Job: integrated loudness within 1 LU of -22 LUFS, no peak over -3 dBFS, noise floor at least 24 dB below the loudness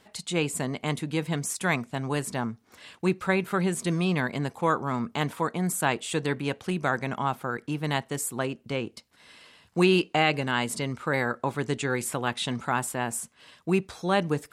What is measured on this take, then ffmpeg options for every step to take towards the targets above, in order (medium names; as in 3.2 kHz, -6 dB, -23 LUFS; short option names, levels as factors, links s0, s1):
loudness -28.0 LUFS; peak level -8.0 dBFS; loudness target -22.0 LUFS
-> -af "volume=2,alimiter=limit=0.708:level=0:latency=1"